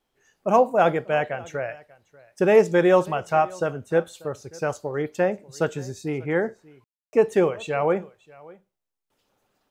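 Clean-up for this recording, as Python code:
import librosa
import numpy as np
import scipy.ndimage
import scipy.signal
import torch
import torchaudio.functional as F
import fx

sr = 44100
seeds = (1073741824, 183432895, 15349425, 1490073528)

y = fx.fix_ambience(x, sr, seeds[0], print_start_s=8.65, print_end_s=9.15, start_s=6.84, end_s=7.13)
y = fx.fix_echo_inverse(y, sr, delay_ms=590, level_db=-23.0)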